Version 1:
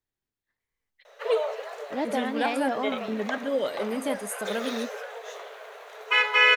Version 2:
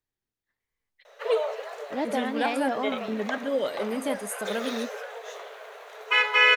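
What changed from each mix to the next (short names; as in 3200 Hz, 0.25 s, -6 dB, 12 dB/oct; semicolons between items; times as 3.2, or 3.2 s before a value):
none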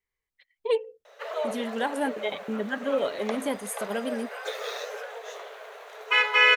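first voice: entry -0.60 s; second voice: muted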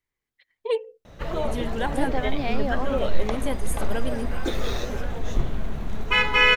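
second voice: unmuted; background: remove rippled Chebyshev high-pass 420 Hz, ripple 3 dB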